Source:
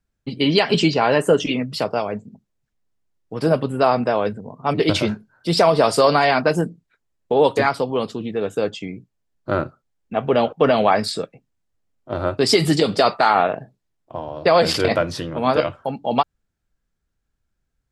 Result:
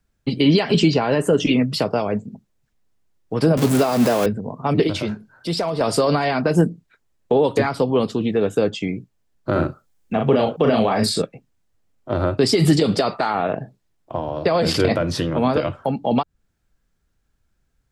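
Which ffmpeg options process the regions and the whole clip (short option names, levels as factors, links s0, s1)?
-filter_complex "[0:a]asettb=1/sr,asplit=3[s0][s1][s2];[s0]atrim=end=3.574[s3];[s1]atrim=start=3.57:end=4.26,asetpts=PTS-STARTPTS,afade=t=in:d=0.004:c=qsin,afade=t=out:st=0.686:d=0.004:c=qsin,aeval=exprs='val(0)+0.5*0.0891*sgn(val(0))':c=same,highpass=140,highshelf=f=3800:g=7.5[s4];[s2]atrim=start=4.256[s5];[s3][s4]acrossfade=d=0.004:c1=hsin:c2=qsin[s6];[s6][s5]acrossfade=d=0.004:c1=qsin:c2=hsin,asettb=1/sr,asplit=3[s7][s8][s9];[s7]atrim=end=4.874[s10];[s8]atrim=start=4.87:end=5.81,asetpts=PTS-STARTPTS,afade=t=in:d=0.004:c=qsin,afade=t=out:st=0.936:d=0.004:c=qsin,volume=2,asoftclip=hard,volume=0.501,acompressor=threshold=0.00708:ratio=1.5:attack=3.2:release=140:knee=1:detection=peak[s11];[s9]atrim=start=5.806[s12];[s10][s11]acrossfade=d=0.004:c1=hsin:c2=qsin[s13];[s13][s12]acrossfade=d=0.004:c1=qsin:c2=hsin,asettb=1/sr,asplit=3[s14][s15][s16];[s14]atrim=end=9.524[s17];[s15]atrim=start=9.52:end=11.22,asetpts=PTS-STARTPTS,afade=t=in:d=0.004:c=qsin,afade=t=out:st=1.696:d=0.004:c=qsin,highshelf=f=5600:g=7.5,asplit=2[s18][s19];[s19]adelay=36,volume=0.631[s20];[s18][s20]amix=inputs=2:normalize=0,atrim=end_sample=74970[s21];[s16]atrim=start=11.216[s22];[s17][s21]acrossfade=d=0.004:c1=hsin:c2=qsin[s23];[s23][s22]acrossfade=d=0.004:c1=qsin:c2=hsin,alimiter=limit=0.316:level=0:latency=1:release=88,acrossover=split=390[s24][s25];[s25]acompressor=threshold=0.0251:ratio=2[s26];[s24][s26]amix=inputs=2:normalize=0,volume=2.11"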